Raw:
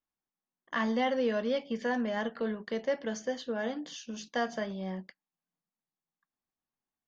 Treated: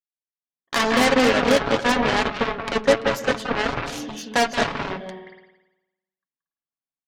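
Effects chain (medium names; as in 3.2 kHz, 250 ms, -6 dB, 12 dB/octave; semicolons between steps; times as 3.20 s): gate with hold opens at -48 dBFS; on a send at -3 dB: reverberation RT60 1.0 s, pre-delay 174 ms; on the sum: level rider gain up to 10 dB; Chebyshev shaper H 7 -11 dB, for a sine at -9 dBFS; comb 7.2 ms, depth 39%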